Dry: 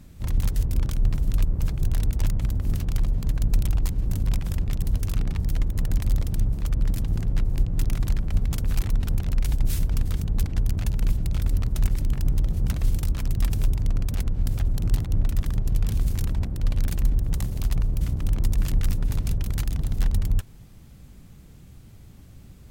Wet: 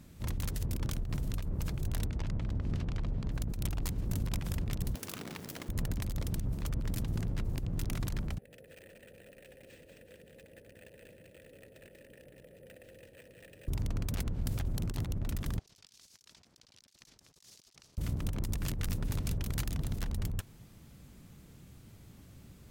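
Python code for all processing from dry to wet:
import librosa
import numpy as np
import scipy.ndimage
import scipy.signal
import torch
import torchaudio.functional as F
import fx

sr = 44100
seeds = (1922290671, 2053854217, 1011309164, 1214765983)

y = fx.chain(x, sr, fx.lowpass(hz=5600.0, slope=12),
    fx.high_shelf(hz=4000.0, db=-7.5), at=(2.05, 3.32))
y = fx.chain(y, sr, fx.highpass(hz=270.0, slope=12),
    fx.quant_companded(bits=4), at=(4.95, 5.69))
y = fx.chain(y, sr, fx.vowel_filter(vowel='e'),
    fx.echo_split(split_hz=750.0, low_ms=95, high_ms=188, feedback_pct=52, wet_db=-4.5),
    fx.resample_bad(factor=4, down='none', up='hold'), at=(8.38, 13.68))
y = fx.chain(y, sr, fx.bandpass_q(hz=5300.0, q=1.9),
    fx.over_compress(threshold_db=-59.0, ratio=-1.0), at=(15.59, 17.98))
y = fx.low_shelf(y, sr, hz=69.0, db=-12.0)
y = fx.notch(y, sr, hz=770.0, q=25.0)
y = fx.over_compress(y, sr, threshold_db=-28.0, ratio=-0.5)
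y = y * 10.0 ** (-3.5 / 20.0)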